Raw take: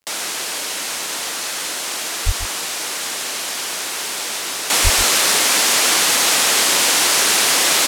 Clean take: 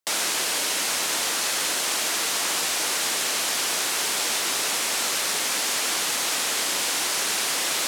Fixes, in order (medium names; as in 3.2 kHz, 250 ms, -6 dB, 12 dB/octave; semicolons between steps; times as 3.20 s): de-click; 2.25–2.37 s: high-pass 140 Hz 24 dB/octave; 4.83–4.95 s: high-pass 140 Hz 24 dB/octave; inverse comb 137 ms -12 dB; 4.70 s: gain correction -9.5 dB